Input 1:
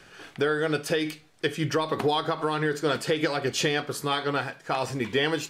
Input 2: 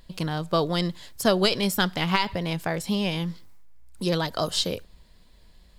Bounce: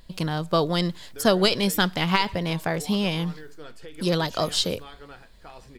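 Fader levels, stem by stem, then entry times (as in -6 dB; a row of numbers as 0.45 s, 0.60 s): -18.0 dB, +1.5 dB; 0.75 s, 0.00 s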